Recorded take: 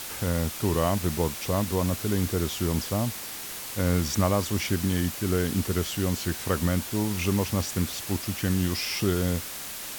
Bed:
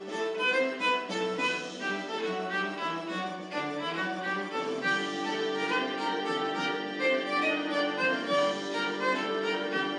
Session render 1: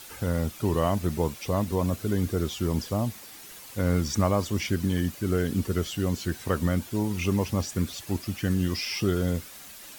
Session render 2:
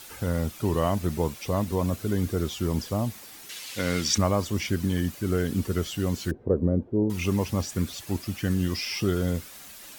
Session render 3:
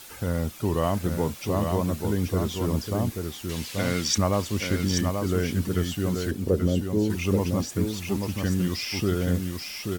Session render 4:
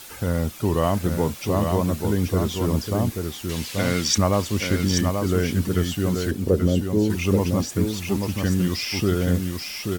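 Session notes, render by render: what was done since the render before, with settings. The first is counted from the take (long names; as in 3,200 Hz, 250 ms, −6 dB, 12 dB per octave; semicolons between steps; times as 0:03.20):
broadband denoise 10 dB, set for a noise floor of −37 dBFS
0:03.49–0:04.18: meter weighting curve D; 0:06.31–0:07.10: low-pass with resonance 450 Hz, resonance Q 2.2
single-tap delay 833 ms −5 dB
level +3.5 dB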